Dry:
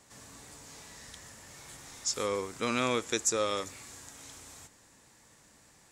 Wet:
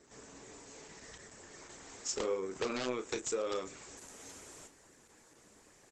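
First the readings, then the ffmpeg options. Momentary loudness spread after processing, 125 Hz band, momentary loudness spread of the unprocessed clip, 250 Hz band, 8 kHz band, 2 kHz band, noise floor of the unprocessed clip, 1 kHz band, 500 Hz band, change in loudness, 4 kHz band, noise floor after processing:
17 LU, -9.5 dB, 20 LU, -5.5 dB, -7.5 dB, -7.5 dB, -61 dBFS, -8.0 dB, -3.0 dB, -7.5 dB, -8.0 dB, -63 dBFS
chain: -filter_complex "[0:a]equalizer=f=100:t=o:w=0.67:g=-10,equalizer=f=400:t=o:w=0.67:g=9,equalizer=f=4k:t=o:w=0.67:g=-5,acompressor=threshold=-29dB:ratio=12,aeval=exprs='(mod(14.1*val(0)+1,2)-1)/14.1':c=same,flanger=delay=0.5:depth=9.8:regen=-40:speed=0.81:shape=sinusoidal,asplit=2[a][b];[b]adelay=32,volume=-9.5dB[c];[a][c]amix=inputs=2:normalize=0,volume=2.5dB" -ar 48000 -c:a libopus -b:a 12k

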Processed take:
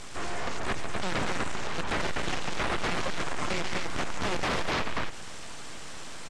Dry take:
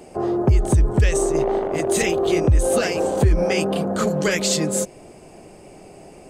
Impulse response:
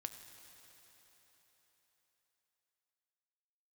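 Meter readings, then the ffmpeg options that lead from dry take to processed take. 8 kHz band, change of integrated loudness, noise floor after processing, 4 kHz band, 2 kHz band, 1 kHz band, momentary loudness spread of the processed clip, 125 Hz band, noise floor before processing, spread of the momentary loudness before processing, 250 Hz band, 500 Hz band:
-14.0 dB, -12.0 dB, -37 dBFS, -4.5 dB, -3.0 dB, -4.0 dB, 13 LU, -17.5 dB, -45 dBFS, 5 LU, -14.0 dB, -16.0 dB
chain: -filter_complex "[0:a]aderivative,acompressor=threshold=-32dB:ratio=5,lowshelf=f=240:g=6.5,aecho=1:1:139.9|247.8:0.562|0.708,aeval=exprs='abs(val(0))':c=same,acrossover=split=2500[a][b];[b]acompressor=threshold=-55dB:ratio=4:attack=1:release=60[c];[a][c]amix=inputs=2:normalize=0,aeval=exprs='0.0596*sin(PI/2*5.62*val(0)/0.0596)':c=same,lowpass=f=7.9k:w=0.5412,lowpass=f=7.9k:w=1.3066"

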